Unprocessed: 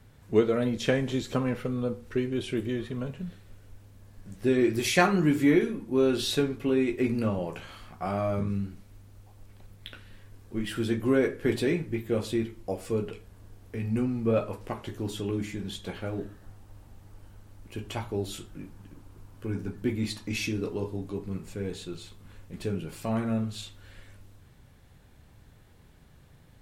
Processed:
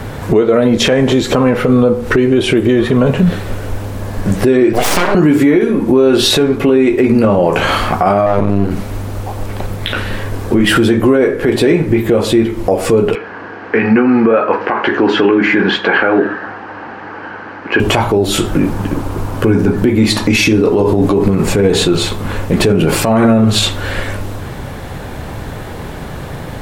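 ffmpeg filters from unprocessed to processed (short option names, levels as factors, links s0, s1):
-filter_complex "[0:a]asettb=1/sr,asplit=3[s0][s1][s2];[s0]atrim=end=4.734[s3];[s1]atrim=start=4.73:end=5.15,asetpts=PTS-STARTPTS,afade=t=in:d=0.004:c=qsin,afade=t=out:st=0.416:d=0.004:c=qsin,aeval=exprs='abs(val(0))':c=same[s4];[s2]atrim=start=5.146[s5];[s3][s4]acrossfade=d=0.004:c1=hsin:c2=qsin[s6];[s6][s5]acrossfade=d=0.004:c1=qsin:c2=hsin,asettb=1/sr,asplit=3[s7][s8][s9];[s7]atrim=end=8.264[s10];[s8]atrim=start=8.26:end=8.71,asetpts=PTS-STARTPTS,afade=t=in:d=0.004:c=qsin,afade=t=out:st=0.446:d=0.004:c=qsin,aeval=exprs='max(val(0),0)':c=same[s11];[s9]atrim=start=8.706[s12];[s10][s11]acrossfade=d=0.004:c1=hsin:c2=qsin[s13];[s13][s12]acrossfade=d=0.004:c1=qsin:c2=hsin,asettb=1/sr,asplit=3[s14][s15][s16];[s14]atrim=end=13.154[s17];[s15]atrim=start=13.15:end=17.8,asetpts=PTS-STARTPTS,afade=t=in:d=0.004:c=qsin,afade=t=out:st=4.646:d=0.004:c=qsin,highpass=350,equalizer=f=410:t=q:w=4:g=-3,equalizer=f=600:t=q:w=4:g=-8,equalizer=f=1600:t=q:w=4:g=9,equalizer=f=3600:t=q:w=4:g=-10,lowpass=f=3800:w=0.5412,lowpass=f=3800:w=1.3066[s18];[s16]atrim=start=17.796[s19];[s17][s18]acrossfade=d=0.004:c1=hsin:c2=qsin[s20];[s20][s19]acrossfade=d=0.004:c1=qsin:c2=hsin,asettb=1/sr,asplit=3[s21][s22][s23];[s21]atrim=end=20.744[s24];[s22]atrim=start=20.74:end=23.44,asetpts=PTS-STARTPTS,afade=t=in:d=0.004:c=qsin,afade=t=out:st=2.696:d=0.004:c=qsin,acompressor=threshold=0.0251:ratio=6:attack=3.2:release=140:knee=1:detection=peak[s25];[s23]atrim=start=23.436[s26];[s24][s25]acrossfade=d=0.004:c1=hsin:c2=qsin[s27];[s27][s26]acrossfade=d=0.004:c1=qsin:c2=hsin,equalizer=f=670:w=0.36:g=9.5,acompressor=threshold=0.0282:ratio=10,alimiter=level_in=26.6:limit=0.891:release=50:level=0:latency=1,volume=0.891"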